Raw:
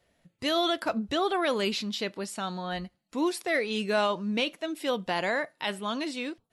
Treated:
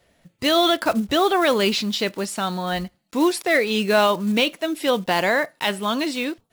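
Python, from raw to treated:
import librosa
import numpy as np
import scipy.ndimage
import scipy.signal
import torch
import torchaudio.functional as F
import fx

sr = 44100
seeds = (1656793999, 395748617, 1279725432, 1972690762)

y = fx.block_float(x, sr, bits=5)
y = F.gain(torch.from_numpy(y), 8.5).numpy()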